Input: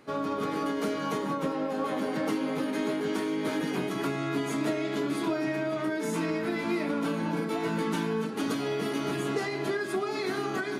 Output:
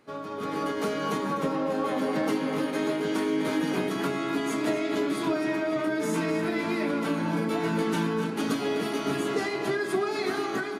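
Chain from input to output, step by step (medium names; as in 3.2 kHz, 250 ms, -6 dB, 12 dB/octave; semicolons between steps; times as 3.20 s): de-hum 69.79 Hz, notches 5; level rider gain up to 7 dB; echo from a far wall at 43 m, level -8 dB; trim -5 dB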